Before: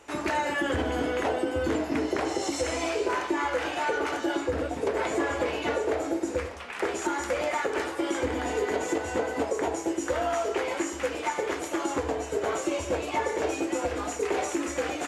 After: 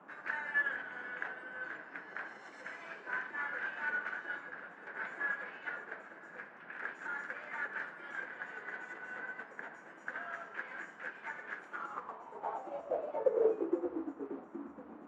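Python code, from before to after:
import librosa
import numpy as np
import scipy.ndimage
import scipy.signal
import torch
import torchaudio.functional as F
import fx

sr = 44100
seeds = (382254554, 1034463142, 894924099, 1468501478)

y = fx.echo_banded(x, sr, ms=497, feedback_pct=82, hz=2000.0, wet_db=-15.0)
y = fx.filter_sweep_bandpass(y, sr, from_hz=1600.0, to_hz=220.0, start_s=11.56, end_s=14.58, q=7.3)
y = fx.dmg_noise_band(y, sr, seeds[0], low_hz=170.0, high_hz=1300.0, level_db=-54.0)
y = fx.upward_expand(y, sr, threshold_db=-50.0, expansion=1.5)
y = y * 10.0 ** (5.5 / 20.0)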